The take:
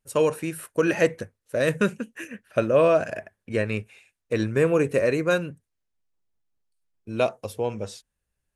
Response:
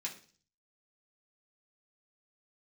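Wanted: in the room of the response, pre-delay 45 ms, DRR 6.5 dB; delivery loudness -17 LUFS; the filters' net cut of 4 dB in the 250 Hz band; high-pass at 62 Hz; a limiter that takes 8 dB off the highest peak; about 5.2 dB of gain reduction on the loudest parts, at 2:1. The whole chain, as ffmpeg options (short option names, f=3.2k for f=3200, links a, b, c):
-filter_complex "[0:a]highpass=62,equalizer=f=250:t=o:g=-6,acompressor=threshold=-25dB:ratio=2,alimiter=limit=-19.5dB:level=0:latency=1,asplit=2[a][b];[1:a]atrim=start_sample=2205,adelay=45[c];[b][c]afir=irnorm=-1:irlink=0,volume=-6.5dB[d];[a][d]amix=inputs=2:normalize=0,volume=15dB"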